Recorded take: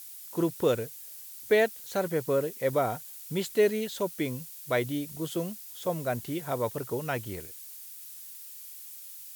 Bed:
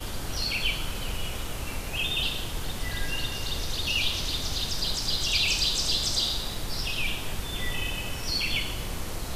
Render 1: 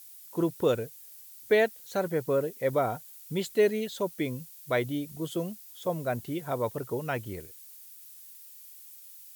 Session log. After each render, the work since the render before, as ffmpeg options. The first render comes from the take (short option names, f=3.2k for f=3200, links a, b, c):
-af "afftdn=nr=6:nf=-45"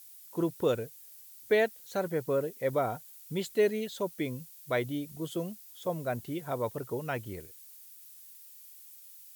-af "volume=-2.5dB"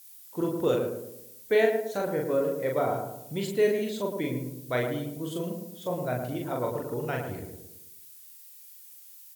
-filter_complex "[0:a]asplit=2[a][b];[b]adelay=40,volume=-2.5dB[c];[a][c]amix=inputs=2:normalize=0,asplit=2[d][e];[e]adelay=110,lowpass=f=1k:p=1,volume=-4dB,asplit=2[f][g];[g]adelay=110,lowpass=f=1k:p=1,volume=0.5,asplit=2[h][i];[i]adelay=110,lowpass=f=1k:p=1,volume=0.5,asplit=2[j][k];[k]adelay=110,lowpass=f=1k:p=1,volume=0.5,asplit=2[l][m];[m]adelay=110,lowpass=f=1k:p=1,volume=0.5,asplit=2[n][o];[o]adelay=110,lowpass=f=1k:p=1,volume=0.5[p];[d][f][h][j][l][n][p]amix=inputs=7:normalize=0"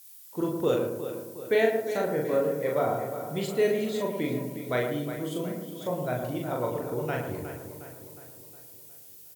-filter_complex "[0:a]asplit=2[a][b];[b]adelay=27,volume=-12.5dB[c];[a][c]amix=inputs=2:normalize=0,asplit=2[d][e];[e]adelay=361,lowpass=f=4.2k:p=1,volume=-10.5dB,asplit=2[f][g];[g]adelay=361,lowpass=f=4.2k:p=1,volume=0.53,asplit=2[h][i];[i]adelay=361,lowpass=f=4.2k:p=1,volume=0.53,asplit=2[j][k];[k]adelay=361,lowpass=f=4.2k:p=1,volume=0.53,asplit=2[l][m];[m]adelay=361,lowpass=f=4.2k:p=1,volume=0.53,asplit=2[n][o];[o]adelay=361,lowpass=f=4.2k:p=1,volume=0.53[p];[d][f][h][j][l][n][p]amix=inputs=7:normalize=0"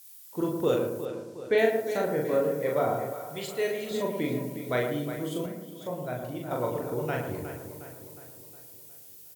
-filter_complex "[0:a]asettb=1/sr,asplit=3[a][b][c];[a]atrim=end=1.054[d];[b]atrim=start=1.05:end=1.58,asetpts=PTS-STARTPTS,afade=t=in:d=0.004:c=qsin,afade=t=out:st=0.526:d=0.004:c=qsin,lowpass=6.5k[e];[c]atrim=start=1.576[f];[d][e]acrossfade=d=0.004:c1=hsin:c2=qsin[g];[g][f]acrossfade=d=0.004:c1=qsin:c2=hsin,asettb=1/sr,asplit=3[h][i][j];[h]atrim=end=3.134[k];[i]atrim=start=3.13:end=3.91,asetpts=PTS-STARTPTS,afade=t=in:d=0.004:c=qsin,afade=t=out:st=0.776:d=0.004:c=qsin,equalizer=f=210:t=o:w=1.9:g=-11[l];[j]atrim=start=3.906[m];[k][l]acrossfade=d=0.004:c1=hsin:c2=qsin[n];[n][m]acrossfade=d=0.004:c1=qsin:c2=hsin,asplit=3[o][p][q];[o]atrim=end=5.462[r];[p]atrim=start=5.458:end=6.512,asetpts=PTS-STARTPTS,volume=-4dB[s];[q]atrim=start=6.508[t];[r][s]acrossfade=d=0.004:c1=hsin:c2=hsin[u];[u][t]acrossfade=d=0.004:c1=hsin:c2=hsin"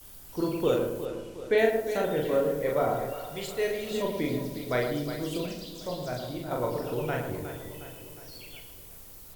-filter_complex "[1:a]volume=-20.5dB[a];[0:a][a]amix=inputs=2:normalize=0"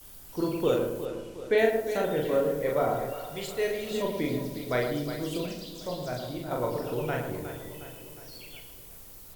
-af "bandreject=f=50:t=h:w=6,bandreject=f=100:t=h:w=6"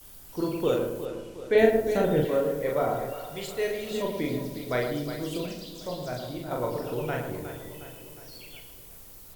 -filter_complex "[0:a]asettb=1/sr,asplit=3[a][b][c];[a]atrim=end=1.554[d];[b]atrim=start=1.55:end=2.25,asetpts=PTS-STARTPTS,afade=t=in:d=0.004:c=qsin,afade=t=out:st=0.696:d=0.004:c=qsin,lowshelf=f=330:g=11[e];[c]atrim=start=2.246[f];[d][e]acrossfade=d=0.004:c1=hsin:c2=qsin[g];[g][f]acrossfade=d=0.004:c1=qsin:c2=hsin"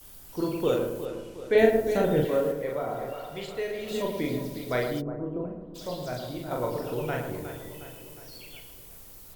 -filter_complex "[0:a]asettb=1/sr,asplit=3[a][b][c];[a]atrim=end=2.514[d];[b]atrim=start=2.51:end=3.88,asetpts=PTS-STARTPTS,afade=t=in:d=0.004:c=qsin,afade=t=out:st=1.366:d=0.004:c=qsin,acrossover=split=130|4300[e][f][g];[e]acompressor=threshold=-50dB:ratio=4[h];[f]acompressor=threshold=-28dB:ratio=4[i];[g]acompressor=threshold=-54dB:ratio=4[j];[h][i][j]amix=inputs=3:normalize=0[k];[c]atrim=start=3.876[l];[d][k]acrossfade=d=0.004:c1=hsin:c2=qsin[m];[m][l]acrossfade=d=0.004:c1=qsin:c2=hsin,asplit=3[n][o][p];[n]afade=t=out:st=5:d=0.02[q];[o]lowpass=f=1.2k:w=0.5412,lowpass=f=1.2k:w=1.3066,afade=t=in:st=5:d=0.02,afade=t=out:st=5.74:d=0.02[r];[p]afade=t=in:st=5.74:d=0.02[s];[q][r][s]amix=inputs=3:normalize=0"